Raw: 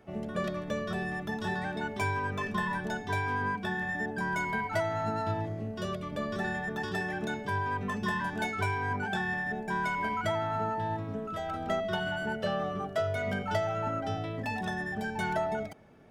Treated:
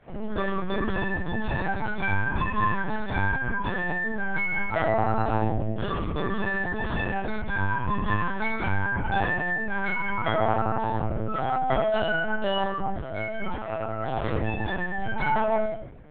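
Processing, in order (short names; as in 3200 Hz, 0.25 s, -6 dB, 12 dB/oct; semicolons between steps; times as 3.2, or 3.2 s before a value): 12.7–14.66 negative-ratio compressor -37 dBFS, ratio -1; reverb RT60 0.60 s, pre-delay 8 ms, DRR -6 dB; LPC vocoder at 8 kHz pitch kept; gain -3.5 dB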